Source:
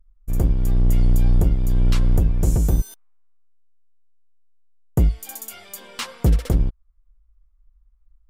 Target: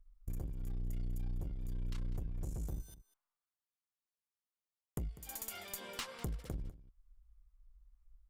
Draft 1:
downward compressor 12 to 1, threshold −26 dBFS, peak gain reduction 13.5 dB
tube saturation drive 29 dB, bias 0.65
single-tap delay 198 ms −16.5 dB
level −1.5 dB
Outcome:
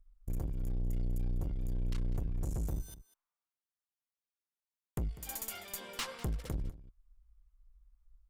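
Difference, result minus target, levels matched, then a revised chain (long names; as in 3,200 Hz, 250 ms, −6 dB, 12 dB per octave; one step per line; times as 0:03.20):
downward compressor: peak gain reduction −6.5 dB
downward compressor 12 to 1, threshold −33 dBFS, peak gain reduction 20 dB
tube saturation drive 29 dB, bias 0.65
single-tap delay 198 ms −16.5 dB
level −1.5 dB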